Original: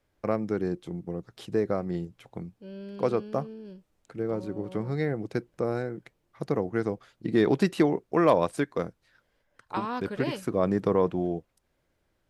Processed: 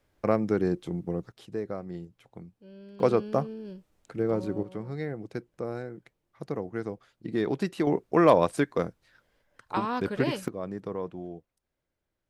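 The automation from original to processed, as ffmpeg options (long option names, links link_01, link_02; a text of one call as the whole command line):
ffmpeg -i in.wav -af "asetnsamples=nb_out_samples=441:pad=0,asendcmd='1.32 volume volume -7dB;3 volume volume 3dB;4.63 volume volume -5.5dB;7.87 volume volume 2dB;10.48 volume volume -10.5dB',volume=3dB" out.wav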